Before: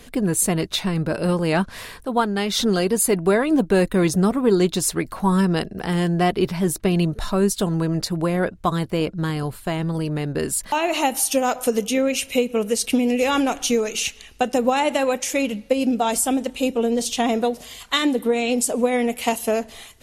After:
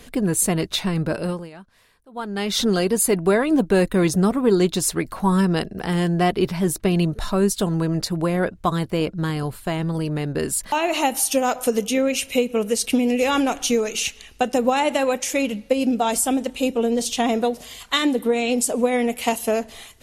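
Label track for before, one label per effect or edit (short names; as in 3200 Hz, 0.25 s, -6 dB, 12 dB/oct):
1.110000	2.500000	dip -22 dB, fades 0.39 s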